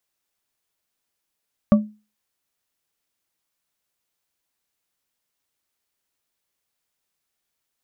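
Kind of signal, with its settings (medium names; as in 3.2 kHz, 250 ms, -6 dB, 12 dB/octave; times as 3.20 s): glass hit bar, lowest mode 212 Hz, modes 3, decay 0.31 s, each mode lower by 7 dB, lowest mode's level -7 dB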